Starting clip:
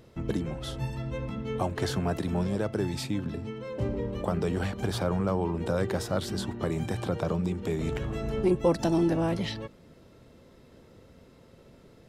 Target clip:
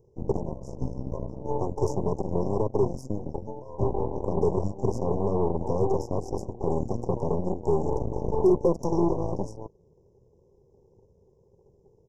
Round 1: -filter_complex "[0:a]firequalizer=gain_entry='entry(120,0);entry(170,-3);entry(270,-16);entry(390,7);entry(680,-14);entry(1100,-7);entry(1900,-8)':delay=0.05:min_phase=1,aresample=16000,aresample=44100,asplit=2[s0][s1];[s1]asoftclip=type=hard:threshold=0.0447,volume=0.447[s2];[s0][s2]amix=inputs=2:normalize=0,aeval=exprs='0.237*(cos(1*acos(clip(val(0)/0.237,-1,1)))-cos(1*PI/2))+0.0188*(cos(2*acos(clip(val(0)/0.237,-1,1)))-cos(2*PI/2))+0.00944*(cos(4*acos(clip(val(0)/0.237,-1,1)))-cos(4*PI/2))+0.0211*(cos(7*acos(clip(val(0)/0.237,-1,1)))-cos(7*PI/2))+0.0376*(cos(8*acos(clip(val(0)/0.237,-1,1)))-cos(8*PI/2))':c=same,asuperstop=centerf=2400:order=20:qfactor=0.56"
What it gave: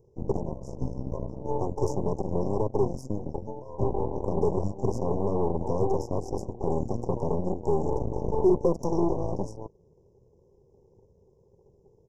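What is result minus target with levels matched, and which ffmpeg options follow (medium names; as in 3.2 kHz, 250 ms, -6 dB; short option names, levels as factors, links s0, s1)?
hard clipper: distortion +9 dB
-filter_complex "[0:a]firequalizer=gain_entry='entry(120,0);entry(170,-3);entry(270,-16);entry(390,7);entry(680,-14);entry(1100,-7);entry(1900,-8)':delay=0.05:min_phase=1,aresample=16000,aresample=44100,asplit=2[s0][s1];[s1]asoftclip=type=hard:threshold=0.0944,volume=0.447[s2];[s0][s2]amix=inputs=2:normalize=0,aeval=exprs='0.237*(cos(1*acos(clip(val(0)/0.237,-1,1)))-cos(1*PI/2))+0.0188*(cos(2*acos(clip(val(0)/0.237,-1,1)))-cos(2*PI/2))+0.00944*(cos(4*acos(clip(val(0)/0.237,-1,1)))-cos(4*PI/2))+0.0211*(cos(7*acos(clip(val(0)/0.237,-1,1)))-cos(7*PI/2))+0.0376*(cos(8*acos(clip(val(0)/0.237,-1,1)))-cos(8*PI/2))':c=same,asuperstop=centerf=2400:order=20:qfactor=0.56"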